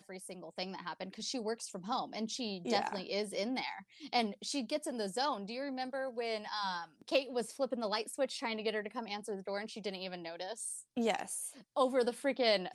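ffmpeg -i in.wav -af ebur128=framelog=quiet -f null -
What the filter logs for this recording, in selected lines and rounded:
Integrated loudness:
  I:         -37.1 LUFS
  Threshold: -47.2 LUFS
Loudness range:
  LRA:         2.2 LU
  Threshold: -57.5 LUFS
  LRA low:   -38.9 LUFS
  LRA high:  -36.6 LUFS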